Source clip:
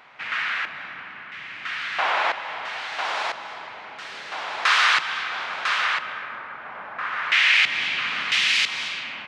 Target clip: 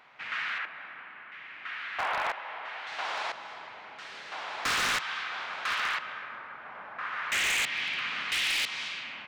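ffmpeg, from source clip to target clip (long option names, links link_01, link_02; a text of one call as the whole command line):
ffmpeg -i in.wav -filter_complex "[0:a]asettb=1/sr,asplit=3[link_01][link_02][link_03];[link_01]atrim=end=0.584[link_04];[link_02]atrim=start=0.58:end=2.87,asetpts=PTS-STARTPTS,afade=type=in:duration=0.004:curve=qsin,afade=type=out:start_time=2.286:duration=0.004:curve=qsin,bass=frequency=250:gain=-9,treble=frequency=4000:gain=-13[link_05];[link_03]atrim=start=2.866[link_06];[link_04][link_05]acrossfade=duration=0.004:curve1=hsin:curve2=qsin[link_07];[link_07][link_06]acrossfade=duration=0.004:curve1=qsin:curve2=hsin,aeval=exprs='0.168*(abs(mod(val(0)/0.168+3,4)-2)-1)':channel_layout=same,volume=-7dB" out.wav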